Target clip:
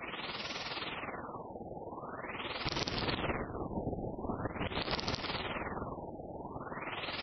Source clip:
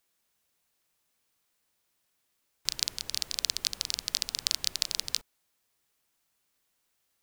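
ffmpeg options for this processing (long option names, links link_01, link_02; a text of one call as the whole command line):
ffmpeg -i in.wav -filter_complex "[0:a]aeval=exprs='val(0)+0.5*0.119*sgn(val(0))':channel_layout=same,asplit=2[link_01][link_02];[link_02]adelay=713,lowpass=frequency=4900:poles=1,volume=-11dB,asplit=2[link_03][link_04];[link_04]adelay=713,lowpass=frequency=4900:poles=1,volume=0.47,asplit=2[link_05][link_06];[link_06]adelay=713,lowpass=frequency=4900:poles=1,volume=0.47,asplit=2[link_07][link_08];[link_08]adelay=713,lowpass=frequency=4900:poles=1,volume=0.47,asplit=2[link_09][link_10];[link_10]adelay=713,lowpass=frequency=4900:poles=1,volume=0.47[link_11];[link_01][link_03][link_05][link_07][link_09][link_11]amix=inputs=6:normalize=0,asettb=1/sr,asplit=3[link_12][link_13][link_14];[link_12]atrim=end=2.714[link_15];[link_13]atrim=start=2.71:end=4.91,asetpts=PTS-STARTPTS,afade=type=in:duration=0.004:curve=qsin,afade=type=out:start_time=2.196:duration=0.004:curve=qsin,acrossover=split=440|3000[link_16][link_17][link_18];[link_17]acompressor=threshold=-30dB:ratio=6[link_19];[link_16][link_19][link_18]amix=inputs=3:normalize=0[link_20];[link_14]atrim=start=4.906[link_21];[link_15][link_20]acrossfade=duration=0.004:curve1=hsin:curve2=qsin[link_22];[link_22][link_21]acrossfade=duration=0.004:curve1=qsin:curve2=hsin,afftfilt=real='re*gte(hypot(re,im),0.0224)':imag='im*gte(hypot(re,im),0.0224)':win_size=1024:overlap=0.75,tremolo=f=19:d=0.35,acrusher=bits=6:mix=0:aa=0.5,adynamicequalizer=threshold=0.002:dfrequency=1600:dqfactor=7:tfrequency=1600:tqfactor=7:attack=5:release=100:ratio=0.375:range=3:mode=cutabove:tftype=bell,alimiter=limit=-12.5dB:level=0:latency=1:release=112,aeval=exprs='0.237*(cos(1*acos(clip(val(0)/0.237,-1,1)))-cos(1*PI/2))+0.0376*(cos(2*acos(clip(val(0)/0.237,-1,1)))-cos(2*PI/2))+0.0015*(cos(4*acos(clip(val(0)/0.237,-1,1)))-cos(4*PI/2))+0.00596*(cos(5*acos(clip(val(0)/0.237,-1,1)))-cos(5*PI/2))+0.0299*(cos(7*acos(clip(val(0)/0.237,-1,1)))-cos(7*PI/2))':channel_layout=same,highpass=frequency=99:poles=1,aemphasis=mode=reproduction:type=50fm,afftfilt=real='re*lt(b*sr/1024,850*pow(6000/850,0.5+0.5*sin(2*PI*0.44*pts/sr)))':imag='im*lt(b*sr/1024,850*pow(6000/850,0.5+0.5*sin(2*PI*0.44*pts/sr)))':win_size=1024:overlap=0.75" out.wav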